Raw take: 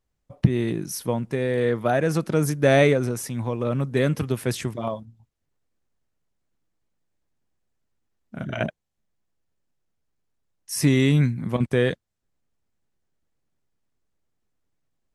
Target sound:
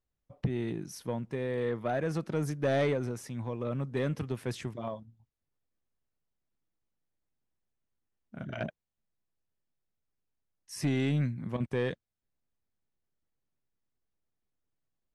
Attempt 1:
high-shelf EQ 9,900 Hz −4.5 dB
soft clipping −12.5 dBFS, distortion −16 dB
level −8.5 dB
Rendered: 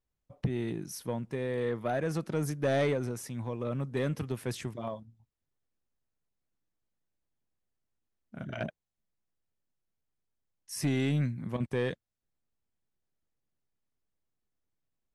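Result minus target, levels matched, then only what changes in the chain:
8,000 Hz band +4.0 dB
change: high-shelf EQ 9,900 Hz −15.5 dB

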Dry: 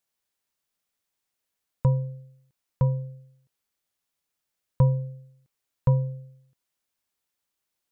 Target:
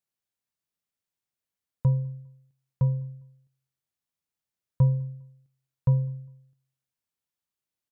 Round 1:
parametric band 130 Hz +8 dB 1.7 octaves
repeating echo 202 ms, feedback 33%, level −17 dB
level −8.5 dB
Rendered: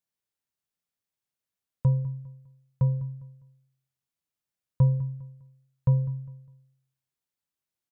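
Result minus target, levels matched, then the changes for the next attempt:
echo-to-direct +11 dB
change: repeating echo 202 ms, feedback 33%, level −28 dB

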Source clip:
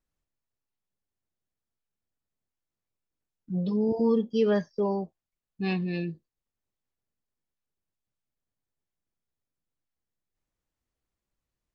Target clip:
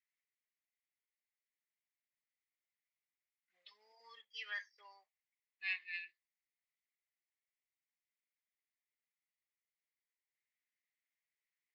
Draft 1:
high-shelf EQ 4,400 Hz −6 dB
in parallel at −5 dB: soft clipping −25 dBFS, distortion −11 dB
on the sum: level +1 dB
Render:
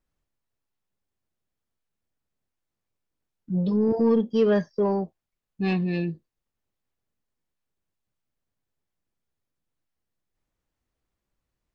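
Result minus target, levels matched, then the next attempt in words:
2,000 Hz band −15.5 dB
four-pole ladder high-pass 1,900 Hz, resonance 75%
high-shelf EQ 4,400 Hz −6 dB
in parallel at −5 dB: soft clipping −25 dBFS, distortion −36 dB
on the sum: level +1 dB

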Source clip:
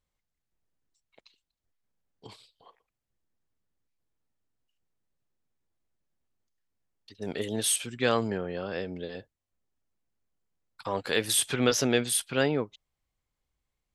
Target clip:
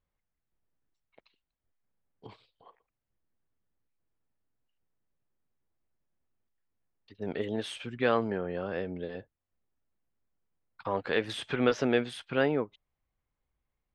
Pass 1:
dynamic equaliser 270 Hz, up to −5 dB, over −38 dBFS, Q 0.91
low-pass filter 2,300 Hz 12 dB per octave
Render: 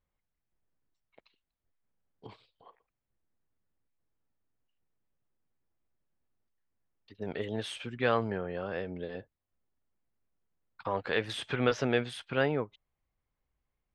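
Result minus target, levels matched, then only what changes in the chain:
125 Hz band +3.5 dB
change: dynamic equaliser 110 Hz, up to −5 dB, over −38 dBFS, Q 0.91

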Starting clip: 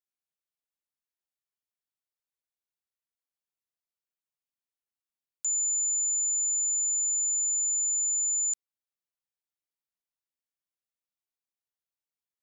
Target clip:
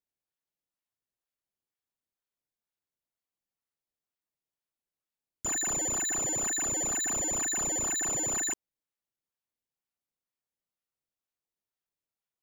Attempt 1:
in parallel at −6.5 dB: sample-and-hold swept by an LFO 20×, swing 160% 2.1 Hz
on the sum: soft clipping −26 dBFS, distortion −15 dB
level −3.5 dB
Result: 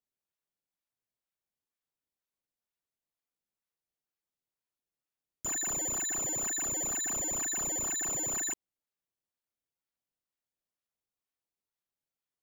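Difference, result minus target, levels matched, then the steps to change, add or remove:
soft clipping: distortion +14 dB
change: soft clipping −17 dBFS, distortion −30 dB

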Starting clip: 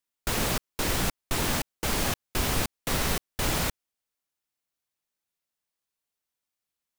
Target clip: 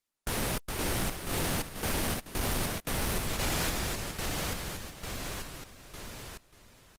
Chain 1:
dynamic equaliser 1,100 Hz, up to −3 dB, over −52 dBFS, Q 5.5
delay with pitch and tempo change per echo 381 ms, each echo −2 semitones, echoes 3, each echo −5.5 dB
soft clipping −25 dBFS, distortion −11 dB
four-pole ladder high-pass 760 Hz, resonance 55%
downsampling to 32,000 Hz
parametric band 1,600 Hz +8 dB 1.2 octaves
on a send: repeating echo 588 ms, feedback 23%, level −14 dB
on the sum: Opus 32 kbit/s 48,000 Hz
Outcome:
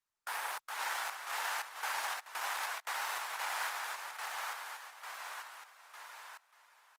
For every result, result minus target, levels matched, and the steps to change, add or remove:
1,000 Hz band +6.0 dB; 2,000 Hz band +5.0 dB
remove: four-pole ladder high-pass 760 Hz, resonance 55%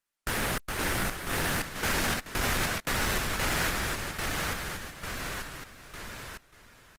2,000 Hz band +4.5 dB
remove: parametric band 1,600 Hz +8 dB 1.2 octaves

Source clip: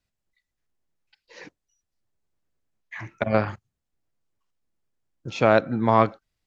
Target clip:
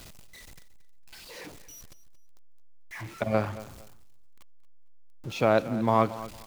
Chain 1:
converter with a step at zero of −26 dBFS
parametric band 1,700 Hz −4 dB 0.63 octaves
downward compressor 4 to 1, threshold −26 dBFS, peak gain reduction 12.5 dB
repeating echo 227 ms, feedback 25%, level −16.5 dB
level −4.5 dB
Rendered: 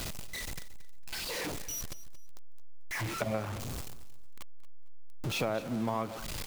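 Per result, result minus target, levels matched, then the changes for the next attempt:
downward compressor: peak gain reduction +12.5 dB; converter with a step at zero: distortion +9 dB
remove: downward compressor 4 to 1, threshold −26 dBFS, peak gain reduction 12.5 dB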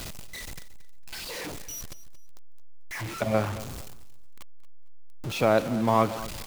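converter with a step at zero: distortion +9 dB
change: converter with a step at zero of −36 dBFS

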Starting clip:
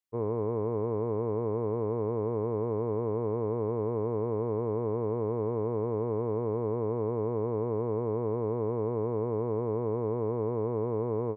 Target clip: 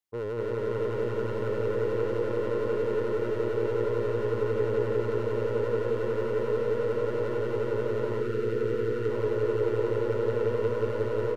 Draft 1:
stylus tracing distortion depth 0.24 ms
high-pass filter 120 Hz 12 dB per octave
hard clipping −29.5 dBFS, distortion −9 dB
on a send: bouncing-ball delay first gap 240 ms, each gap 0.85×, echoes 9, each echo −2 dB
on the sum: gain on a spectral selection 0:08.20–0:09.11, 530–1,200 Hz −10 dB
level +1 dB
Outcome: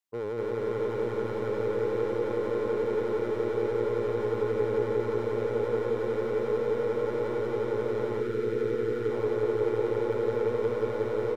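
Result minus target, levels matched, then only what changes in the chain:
125 Hz band −4.0 dB
change: high-pass filter 35 Hz 12 dB per octave

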